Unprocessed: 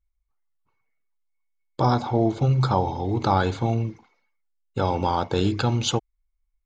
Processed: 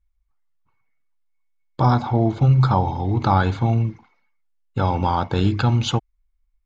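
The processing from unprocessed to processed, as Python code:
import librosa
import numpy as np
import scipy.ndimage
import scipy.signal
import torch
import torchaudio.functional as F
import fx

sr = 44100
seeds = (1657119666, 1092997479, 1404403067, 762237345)

y = fx.lowpass(x, sr, hz=1900.0, slope=6)
y = fx.peak_eq(y, sr, hz=450.0, db=-8.5, octaves=1.4)
y = y * librosa.db_to_amplitude(6.5)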